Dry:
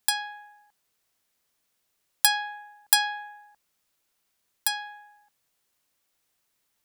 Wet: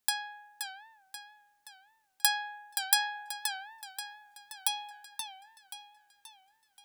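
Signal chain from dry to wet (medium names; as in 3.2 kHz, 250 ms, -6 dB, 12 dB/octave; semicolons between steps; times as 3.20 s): 3.28–4.91 s: comb 0.9 ms, depth 84%; modulated delay 529 ms, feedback 48%, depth 142 cents, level -7.5 dB; trim -5.5 dB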